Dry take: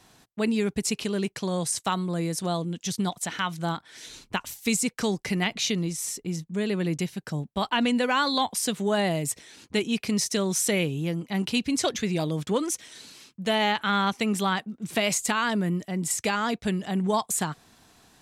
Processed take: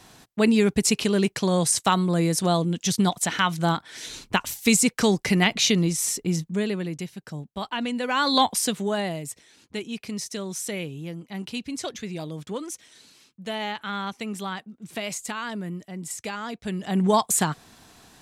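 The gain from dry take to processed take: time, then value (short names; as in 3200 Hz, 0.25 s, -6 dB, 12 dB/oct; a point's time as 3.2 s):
6.44 s +6 dB
6.91 s -4.5 dB
7.98 s -4.5 dB
8.4 s +6 dB
9.29 s -6.5 dB
16.58 s -6.5 dB
17.02 s +5 dB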